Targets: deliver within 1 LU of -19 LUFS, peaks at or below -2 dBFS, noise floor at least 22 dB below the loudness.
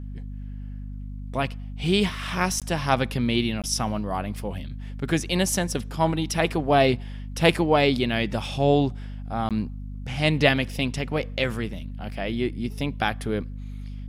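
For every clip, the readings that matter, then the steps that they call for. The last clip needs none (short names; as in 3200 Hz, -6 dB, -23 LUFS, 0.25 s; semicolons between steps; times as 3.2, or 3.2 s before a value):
dropouts 3; longest dropout 17 ms; hum 50 Hz; harmonics up to 250 Hz; hum level -32 dBFS; loudness -25.0 LUFS; peak -3.5 dBFS; loudness target -19.0 LUFS
-> interpolate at 2.6/3.62/9.49, 17 ms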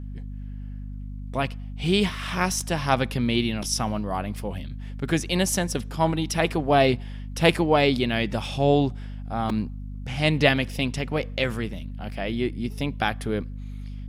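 dropouts 0; hum 50 Hz; harmonics up to 250 Hz; hum level -32 dBFS
-> notches 50/100/150/200/250 Hz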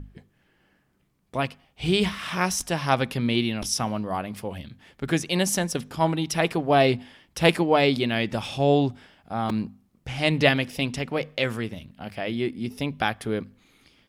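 hum none; loudness -25.0 LUFS; peak -4.0 dBFS; loudness target -19.0 LUFS
-> gain +6 dB; limiter -2 dBFS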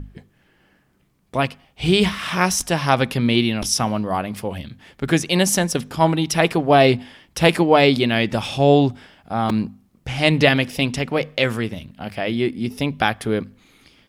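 loudness -19.5 LUFS; peak -2.0 dBFS; noise floor -61 dBFS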